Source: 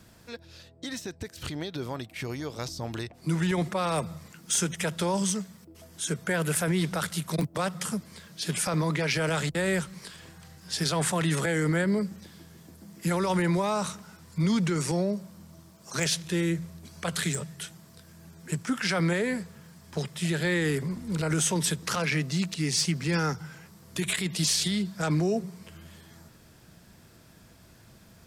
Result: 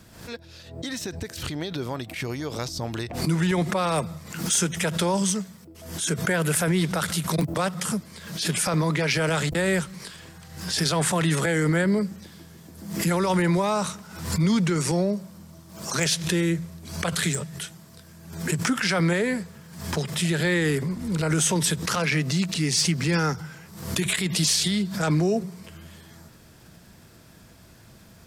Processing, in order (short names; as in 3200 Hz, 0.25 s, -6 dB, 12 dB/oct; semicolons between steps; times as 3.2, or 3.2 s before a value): backwards sustainer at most 78 dB/s; gain +3.5 dB